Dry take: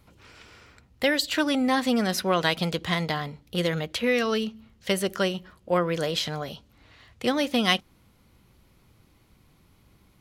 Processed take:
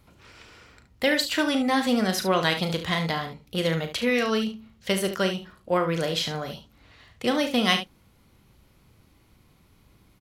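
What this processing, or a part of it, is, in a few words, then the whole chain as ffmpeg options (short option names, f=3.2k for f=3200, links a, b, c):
slapback doubling: -filter_complex "[0:a]asplit=3[a][b][c];[b]adelay=37,volume=-9dB[d];[c]adelay=72,volume=-10.5dB[e];[a][d][e]amix=inputs=3:normalize=0"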